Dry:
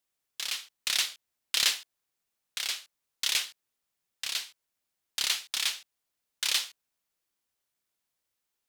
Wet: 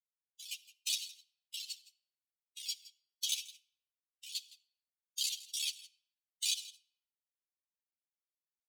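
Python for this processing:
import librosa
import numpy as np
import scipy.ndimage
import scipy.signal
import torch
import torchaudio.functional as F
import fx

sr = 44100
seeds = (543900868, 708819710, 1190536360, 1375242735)

y = fx.bin_expand(x, sr, power=3.0)
y = scipy.signal.sosfilt(scipy.signal.ellip(4, 1.0, 60, 2800.0, 'highpass', fs=sr, output='sos'), y)
y = fx.transient(y, sr, attack_db=-1, sustain_db=-7)
y = fx.over_compress(y, sr, threshold_db=-40.0, ratio=-0.5)
y = y + 10.0 ** (-18.0 / 20.0) * np.pad(y, (int(164 * sr / 1000.0), 0))[:len(y)]
y = fx.room_shoebox(y, sr, seeds[0], volume_m3=2800.0, walls='furnished', distance_m=0.53)
y = fx.ensemble(y, sr)
y = y * 10.0 ** (8.0 / 20.0)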